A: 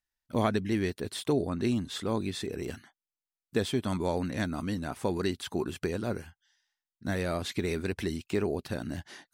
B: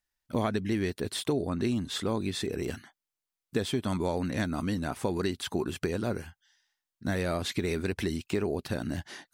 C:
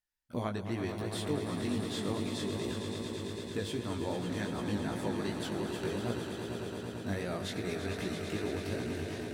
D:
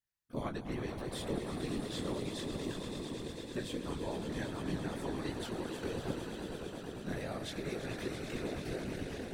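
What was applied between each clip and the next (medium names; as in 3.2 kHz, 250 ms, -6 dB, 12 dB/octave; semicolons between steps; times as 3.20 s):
compression 2.5:1, threshold -30 dBFS, peak gain reduction 6.5 dB; trim +3.5 dB
echo with a slow build-up 112 ms, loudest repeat 5, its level -9 dB; chorus 2.6 Hz, delay 16.5 ms, depth 4 ms; trim -4 dB
whisper effect; trim -3.5 dB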